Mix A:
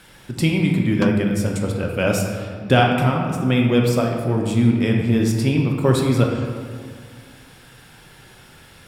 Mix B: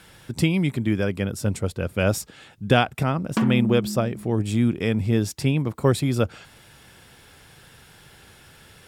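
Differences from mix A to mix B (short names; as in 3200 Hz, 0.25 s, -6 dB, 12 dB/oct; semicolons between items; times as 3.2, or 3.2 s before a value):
background: entry +2.35 s; reverb: off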